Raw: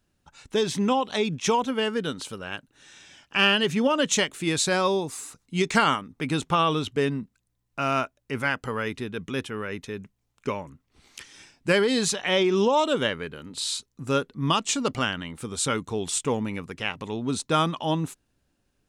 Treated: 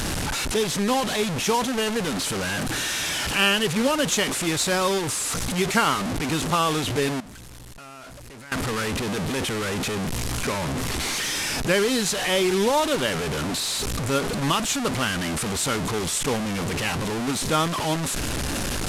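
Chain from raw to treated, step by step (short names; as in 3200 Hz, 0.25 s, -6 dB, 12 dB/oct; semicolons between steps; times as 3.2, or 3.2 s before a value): delta modulation 64 kbps, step -20.5 dBFS; 7.2–8.52 level quantiser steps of 21 dB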